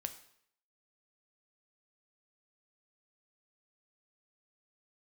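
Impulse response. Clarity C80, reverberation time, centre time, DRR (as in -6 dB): 15.5 dB, 0.65 s, 8 ms, 7.5 dB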